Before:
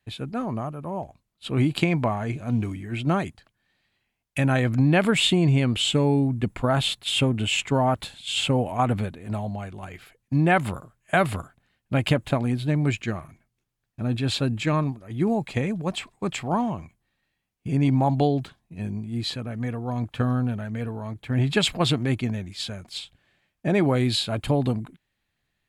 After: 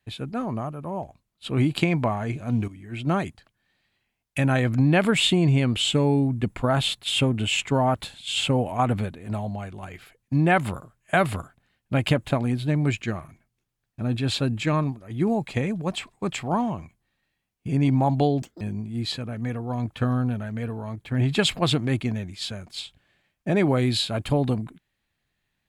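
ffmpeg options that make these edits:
-filter_complex "[0:a]asplit=4[a][b][c][d];[a]atrim=end=2.68,asetpts=PTS-STARTPTS,afade=t=out:st=2.676:d=0.004:c=hsin:silence=0.211349[e];[b]atrim=start=2.68:end=18.424,asetpts=PTS-STARTPTS,afade=t=in:d=0.49:silence=0.211349[f];[c]atrim=start=18.42:end=18.79,asetpts=PTS-STARTPTS,asetrate=86436,aresample=44100[g];[d]atrim=start=18.786[h];[e][f]concat=n=2:v=0:a=1[i];[i][g]acrossfade=d=0.004:c1=hsin:c2=hsin[j];[j][h]acrossfade=d=0.004:c1=hsin:c2=hsin"

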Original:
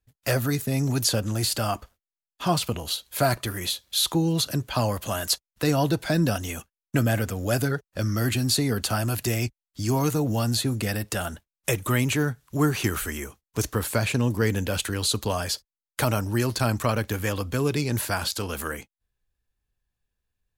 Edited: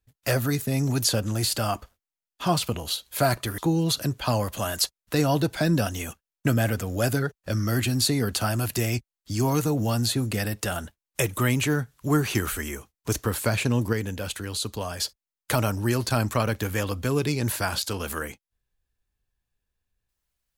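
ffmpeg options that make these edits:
-filter_complex "[0:a]asplit=4[a][b][c][d];[a]atrim=end=3.582[e];[b]atrim=start=4.068:end=14.422[f];[c]atrim=start=14.418:end=15.492,asetpts=PTS-STARTPTS,volume=-5dB[g];[d]atrim=start=15.488[h];[e][f]acrossfade=d=0.004:c1=hsin:c2=hsin[i];[i][g]acrossfade=d=0.004:c1=hsin:c2=hsin[j];[j][h]acrossfade=d=0.004:c1=hsin:c2=hsin"

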